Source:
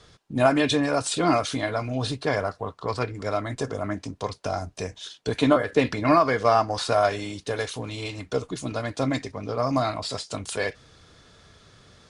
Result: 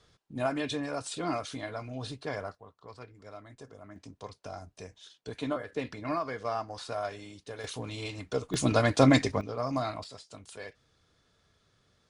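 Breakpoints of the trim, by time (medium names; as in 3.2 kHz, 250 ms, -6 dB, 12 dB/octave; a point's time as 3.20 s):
-11 dB
from 2.55 s -20 dB
from 3.96 s -13.5 dB
from 7.64 s -5 dB
from 8.54 s +5 dB
from 9.41 s -7.5 dB
from 10.04 s -16 dB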